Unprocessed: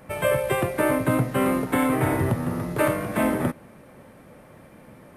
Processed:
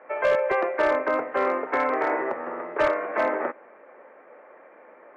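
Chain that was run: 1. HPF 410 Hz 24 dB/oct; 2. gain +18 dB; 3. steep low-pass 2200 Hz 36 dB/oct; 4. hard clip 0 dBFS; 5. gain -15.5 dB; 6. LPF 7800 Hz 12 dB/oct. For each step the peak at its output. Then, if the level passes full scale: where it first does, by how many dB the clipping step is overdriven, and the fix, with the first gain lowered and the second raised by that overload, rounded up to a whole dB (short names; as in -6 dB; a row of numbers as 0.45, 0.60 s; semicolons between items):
-10.0, +8.0, +7.0, 0.0, -15.5, -15.5 dBFS; step 2, 7.0 dB; step 2 +11 dB, step 5 -8.5 dB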